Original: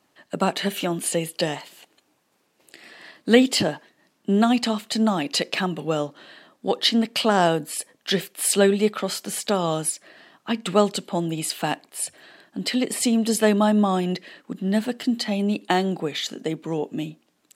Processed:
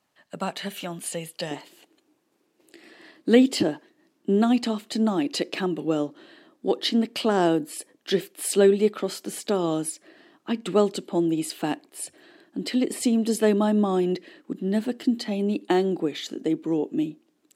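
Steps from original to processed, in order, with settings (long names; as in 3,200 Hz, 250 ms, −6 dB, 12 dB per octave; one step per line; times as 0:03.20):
parametric band 330 Hz −5 dB 0.83 octaves, from 0:01.51 +12.5 dB
level −6.5 dB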